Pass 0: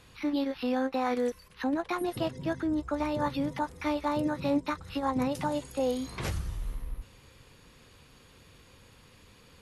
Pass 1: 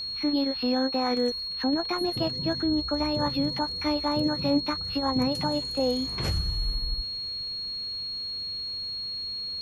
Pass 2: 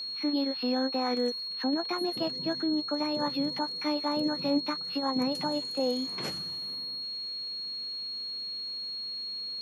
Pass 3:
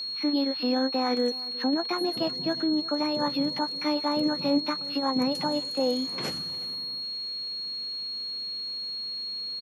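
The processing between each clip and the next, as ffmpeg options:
ffmpeg -i in.wav -af "lowshelf=frequency=460:gain=5,aeval=exprs='val(0)+0.0282*sin(2*PI*4300*n/s)':channel_layout=same" out.wav
ffmpeg -i in.wav -af "highpass=frequency=180:width=0.5412,highpass=frequency=180:width=1.3066,volume=-3dB" out.wav
ffmpeg -i in.wav -af "aecho=1:1:361|722:0.1|0.028,volume=3dB" out.wav

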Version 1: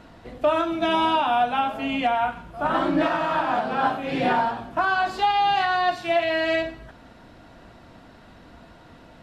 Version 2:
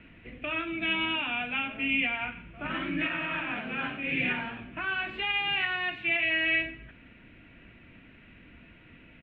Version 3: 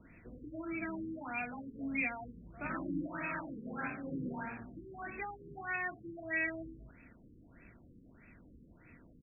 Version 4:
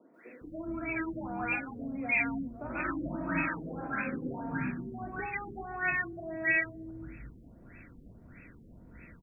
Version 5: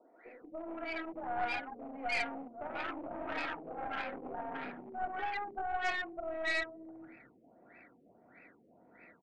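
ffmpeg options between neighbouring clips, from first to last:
ffmpeg -i in.wav -filter_complex "[0:a]firequalizer=gain_entry='entry(280,0);entry(780,-14);entry(2400,13);entry(4900,-27)':delay=0.05:min_phase=1,acrossover=split=230|1200[link_01][link_02][link_03];[link_02]alimiter=level_in=3.5dB:limit=-24dB:level=0:latency=1:release=165,volume=-3.5dB[link_04];[link_01][link_04][link_03]amix=inputs=3:normalize=0,volume=-4.5dB" out.wav
ffmpeg -i in.wav -af "asoftclip=type=hard:threshold=-19dB,afftfilt=real='re*lt(b*sr/1024,480*pow(2700/480,0.5+0.5*sin(2*PI*1.6*pts/sr)))':imag='im*lt(b*sr/1024,480*pow(2700/480,0.5+0.5*sin(2*PI*1.6*pts/sr)))':win_size=1024:overlap=0.75,volume=-4.5dB" out.wav
ffmpeg -i in.wav -filter_complex "[0:a]acrossover=split=300|910[link_01][link_02][link_03];[link_03]adelay=140[link_04];[link_01]adelay=410[link_05];[link_05][link_02][link_04]amix=inputs=3:normalize=0,volume=7.5dB" out.wav
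ffmpeg -i in.wav -af "aeval=exprs='clip(val(0),-1,0.0133)':channel_layout=same,highpass=420,equalizer=frequency=750:width_type=q:width=4:gain=8,equalizer=frequency=1100:width_type=q:width=4:gain=-4,equalizer=frequency=1600:width_type=q:width=4:gain=-5,lowpass=frequency=2400:width=0.5412,lowpass=frequency=2400:width=1.3066,aeval=exprs='0.0668*(cos(1*acos(clip(val(0)/0.0668,-1,1)))-cos(1*PI/2))+0.0119*(cos(4*acos(clip(val(0)/0.0668,-1,1)))-cos(4*PI/2))':channel_layout=same" out.wav

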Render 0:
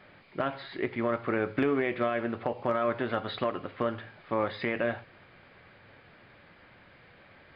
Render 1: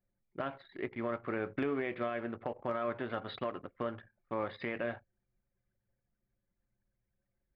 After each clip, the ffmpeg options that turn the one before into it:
ffmpeg -i in.wav -af "anlmdn=0.398,volume=-7dB" out.wav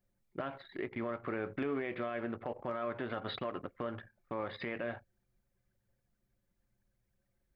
ffmpeg -i in.wav -af "alimiter=level_in=6.5dB:limit=-24dB:level=0:latency=1:release=110,volume=-6.5dB,volume=4dB" out.wav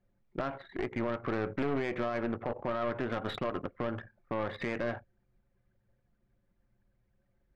ffmpeg -i in.wav -af "aeval=exprs='0.0501*(cos(1*acos(clip(val(0)/0.0501,-1,1)))-cos(1*PI/2))+0.0158*(cos(4*acos(clip(val(0)/0.0501,-1,1)))-cos(4*PI/2))+0.00631*(cos(5*acos(clip(val(0)/0.0501,-1,1)))-cos(5*PI/2))+0.00447*(cos(6*acos(clip(val(0)/0.0501,-1,1)))-cos(6*PI/2))':channel_layout=same,adynamicsmooth=sensitivity=3:basefreq=2800,volume=2dB" out.wav

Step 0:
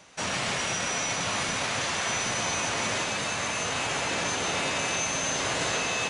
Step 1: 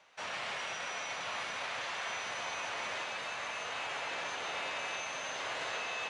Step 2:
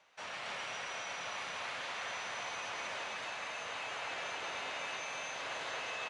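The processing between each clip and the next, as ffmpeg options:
ffmpeg -i in.wav -filter_complex "[0:a]acrossover=split=470 4200:gain=0.178 1 0.2[link_01][link_02][link_03];[link_01][link_02][link_03]amix=inputs=3:normalize=0,volume=-7.5dB" out.wav
ffmpeg -i in.wav -af "aecho=1:1:268:0.668,volume=-4dB" out.wav

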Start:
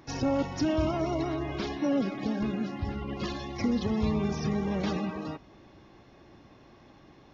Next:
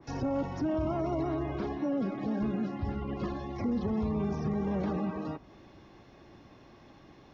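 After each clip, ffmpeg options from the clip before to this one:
ffmpeg -i in.wav -filter_complex "[0:a]acrossover=split=330|370|1700[link_01][link_02][link_03][link_04];[link_04]acompressor=threshold=-52dB:ratio=6[link_05];[link_01][link_02][link_03][link_05]amix=inputs=4:normalize=0,alimiter=limit=-23.5dB:level=0:latency=1:release=18,adynamicequalizer=threshold=0.00282:dfrequency=1800:dqfactor=0.7:tfrequency=1800:tqfactor=0.7:attack=5:release=100:ratio=0.375:range=2.5:mode=cutabove:tftype=highshelf" out.wav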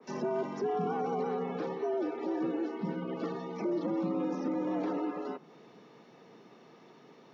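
ffmpeg -i in.wav -af "afreqshift=110,volume=-1.5dB" out.wav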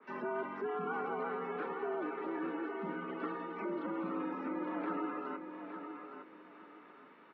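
ffmpeg -i in.wav -af "highpass=350,equalizer=frequency=350:width_type=q:width=4:gain=-4,equalizer=frequency=500:width_type=q:width=4:gain=-9,equalizer=frequency=730:width_type=q:width=4:gain=-9,equalizer=frequency=1400:width_type=q:width=4:gain=7,lowpass=frequency=2700:width=0.5412,lowpass=frequency=2700:width=1.3066,aecho=1:1:862|1724|2586:0.398|0.104|0.0269,volume=1dB" out.wav

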